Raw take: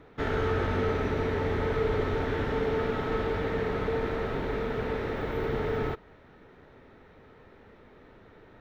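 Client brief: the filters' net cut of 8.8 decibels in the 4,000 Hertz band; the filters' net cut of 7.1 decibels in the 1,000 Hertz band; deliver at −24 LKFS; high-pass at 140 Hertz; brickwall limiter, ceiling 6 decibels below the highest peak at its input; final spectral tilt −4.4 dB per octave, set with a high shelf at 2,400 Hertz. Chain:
high-pass filter 140 Hz
parametric band 1,000 Hz −8.5 dB
high-shelf EQ 2,400 Hz −3 dB
parametric band 4,000 Hz −8.5 dB
level +10.5 dB
brickwall limiter −15 dBFS

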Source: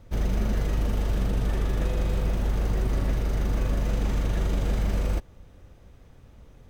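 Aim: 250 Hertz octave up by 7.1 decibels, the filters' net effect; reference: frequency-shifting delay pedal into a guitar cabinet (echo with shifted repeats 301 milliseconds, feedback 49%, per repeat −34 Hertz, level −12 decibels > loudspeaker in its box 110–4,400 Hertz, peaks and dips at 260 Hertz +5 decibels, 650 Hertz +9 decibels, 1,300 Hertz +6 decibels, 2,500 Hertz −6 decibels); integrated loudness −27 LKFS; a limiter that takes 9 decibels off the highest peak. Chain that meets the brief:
parametric band 250 Hz +6.5 dB
brickwall limiter −21.5 dBFS
echo with shifted repeats 301 ms, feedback 49%, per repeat −34 Hz, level −12 dB
loudspeaker in its box 110–4,400 Hz, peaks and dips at 260 Hz +5 dB, 650 Hz +9 dB, 1,300 Hz +6 dB, 2,500 Hz −6 dB
level +6 dB

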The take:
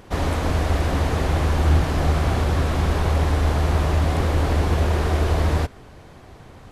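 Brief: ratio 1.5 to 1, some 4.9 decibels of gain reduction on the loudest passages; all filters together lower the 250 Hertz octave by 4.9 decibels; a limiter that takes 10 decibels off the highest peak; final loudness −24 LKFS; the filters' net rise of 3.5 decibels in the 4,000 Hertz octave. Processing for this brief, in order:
parametric band 250 Hz −7.5 dB
parametric band 4,000 Hz +4.5 dB
downward compressor 1.5 to 1, threshold −28 dBFS
level +8.5 dB
brickwall limiter −15 dBFS

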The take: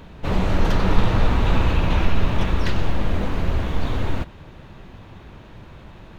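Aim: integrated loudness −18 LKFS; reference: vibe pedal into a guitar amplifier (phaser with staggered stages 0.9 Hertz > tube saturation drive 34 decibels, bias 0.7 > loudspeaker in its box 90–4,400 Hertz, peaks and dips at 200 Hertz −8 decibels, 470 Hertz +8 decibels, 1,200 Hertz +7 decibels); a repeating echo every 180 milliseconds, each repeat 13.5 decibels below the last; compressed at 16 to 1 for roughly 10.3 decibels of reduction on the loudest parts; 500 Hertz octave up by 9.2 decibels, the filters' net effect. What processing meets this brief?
parametric band 500 Hz +5.5 dB
downward compressor 16 to 1, threshold −17 dBFS
repeating echo 180 ms, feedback 21%, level −13.5 dB
phaser with staggered stages 0.9 Hz
tube saturation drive 34 dB, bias 0.7
loudspeaker in its box 90–4,400 Hz, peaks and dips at 200 Hz −8 dB, 470 Hz +8 dB, 1,200 Hz +7 dB
level +23.5 dB

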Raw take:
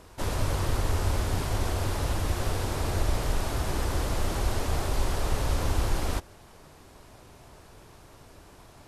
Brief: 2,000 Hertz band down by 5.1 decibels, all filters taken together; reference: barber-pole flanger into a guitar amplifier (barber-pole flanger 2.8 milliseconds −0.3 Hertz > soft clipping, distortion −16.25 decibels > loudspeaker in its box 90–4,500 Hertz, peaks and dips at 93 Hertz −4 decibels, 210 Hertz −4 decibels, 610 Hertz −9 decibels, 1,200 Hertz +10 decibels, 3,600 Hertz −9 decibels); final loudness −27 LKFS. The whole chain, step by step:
parametric band 2,000 Hz −8.5 dB
barber-pole flanger 2.8 ms −0.3 Hz
soft clipping −24 dBFS
loudspeaker in its box 90–4,500 Hz, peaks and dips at 93 Hz −4 dB, 210 Hz −4 dB, 610 Hz −9 dB, 1,200 Hz +10 dB, 3,600 Hz −9 dB
level +12 dB

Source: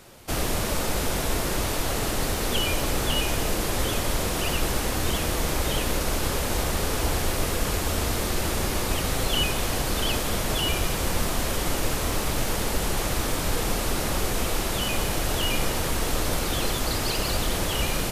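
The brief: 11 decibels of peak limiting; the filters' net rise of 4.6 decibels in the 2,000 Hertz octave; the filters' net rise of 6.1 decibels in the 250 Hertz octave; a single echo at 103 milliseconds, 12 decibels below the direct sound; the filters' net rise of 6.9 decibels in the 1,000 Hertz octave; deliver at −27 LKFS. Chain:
parametric band 250 Hz +7.5 dB
parametric band 1,000 Hz +7.5 dB
parametric band 2,000 Hz +3.5 dB
brickwall limiter −19.5 dBFS
single-tap delay 103 ms −12 dB
level +1.5 dB

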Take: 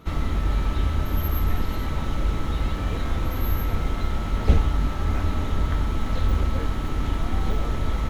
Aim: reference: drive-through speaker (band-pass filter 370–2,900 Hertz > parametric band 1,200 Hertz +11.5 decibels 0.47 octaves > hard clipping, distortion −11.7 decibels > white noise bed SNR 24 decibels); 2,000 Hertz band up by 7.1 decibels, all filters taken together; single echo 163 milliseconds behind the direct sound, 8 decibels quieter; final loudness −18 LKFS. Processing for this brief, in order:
band-pass filter 370–2,900 Hz
parametric band 1,200 Hz +11.5 dB 0.47 octaves
parametric band 2,000 Hz +7 dB
single-tap delay 163 ms −8 dB
hard clipping −26 dBFS
white noise bed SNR 24 dB
level +10.5 dB

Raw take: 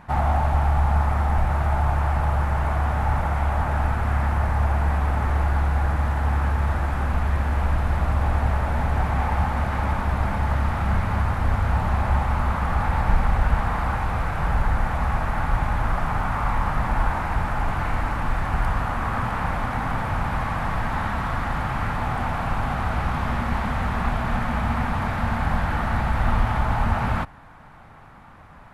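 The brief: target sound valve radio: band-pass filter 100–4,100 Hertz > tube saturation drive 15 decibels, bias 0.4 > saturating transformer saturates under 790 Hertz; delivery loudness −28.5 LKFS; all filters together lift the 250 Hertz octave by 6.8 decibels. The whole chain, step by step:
band-pass filter 100–4,100 Hz
parametric band 250 Hz +9 dB
tube saturation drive 15 dB, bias 0.4
saturating transformer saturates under 790 Hz
level +2.5 dB

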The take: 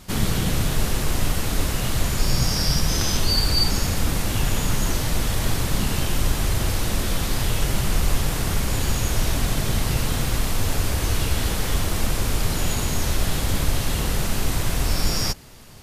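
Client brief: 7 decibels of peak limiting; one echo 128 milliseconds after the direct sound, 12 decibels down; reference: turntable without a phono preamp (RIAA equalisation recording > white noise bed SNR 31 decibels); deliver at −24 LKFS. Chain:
brickwall limiter −13.5 dBFS
RIAA equalisation recording
single-tap delay 128 ms −12 dB
white noise bed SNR 31 dB
level −6.5 dB

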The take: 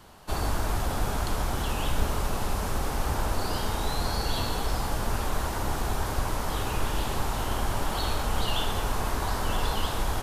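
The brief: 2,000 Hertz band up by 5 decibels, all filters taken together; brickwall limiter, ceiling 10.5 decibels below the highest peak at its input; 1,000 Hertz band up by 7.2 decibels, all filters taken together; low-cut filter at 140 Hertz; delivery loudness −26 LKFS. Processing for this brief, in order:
high-pass filter 140 Hz
parametric band 1,000 Hz +8 dB
parametric band 2,000 Hz +3.5 dB
level +7.5 dB
brickwall limiter −17.5 dBFS

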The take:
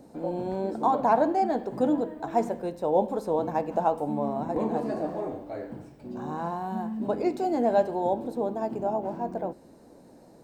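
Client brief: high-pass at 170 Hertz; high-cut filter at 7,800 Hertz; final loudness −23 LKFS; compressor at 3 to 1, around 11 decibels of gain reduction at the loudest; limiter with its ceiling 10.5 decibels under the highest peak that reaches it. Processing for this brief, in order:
high-pass filter 170 Hz
low-pass filter 7,800 Hz
downward compressor 3 to 1, threshold −33 dBFS
level +16.5 dB
brickwall limiter −13.5 dBFS

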